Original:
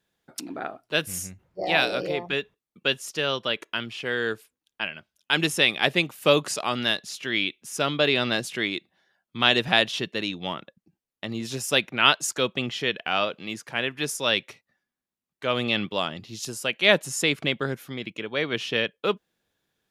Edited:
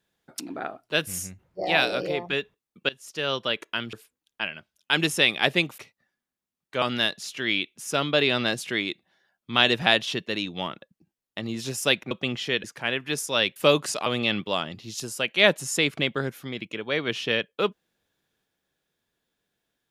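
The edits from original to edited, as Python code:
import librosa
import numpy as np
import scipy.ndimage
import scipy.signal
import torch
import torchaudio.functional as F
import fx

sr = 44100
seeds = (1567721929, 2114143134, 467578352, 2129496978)

y = fx.edit(x, sr, fx.fade_in_from(start_s=2.89, length_s=0.45, floor_db=-21.5),
    fx.cut(start_s=3.93, length_s=0.4),
    fx.swap(start_s=6.18, length_s=0.5, other_s=14.47, other_length_s=1.04),
    fx.cut(start_s=11.97, length_s=0.48),
    fx.cut(start_s=12.98, length_s=0.57), tone=tone)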